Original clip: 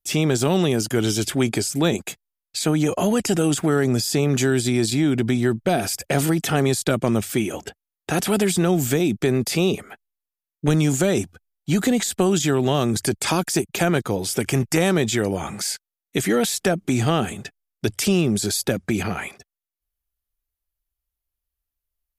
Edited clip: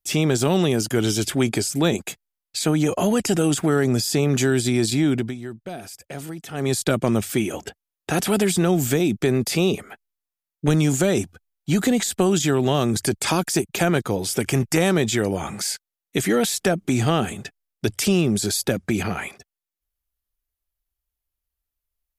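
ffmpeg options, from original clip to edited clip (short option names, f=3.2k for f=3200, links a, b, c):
-filter_complex "[0:a]asplit=3[a][b][c];[a]atrim=end=5.35,asetpts=PTS-STARTPTS,afade=t=out:st=5.13:d=0.22:silence=0.211349[d];[b]atrim=start=5.35:end=6.53,asetpts=PTS-STARTPTS,volume=-13.5dB[e];[c]atrim=start=6.53,asetpts=PTS-STARTPTS,afade=t=in:d=0.22:silence=0.211349[f];[d][e][f]concat=n=3:v=0:a=1"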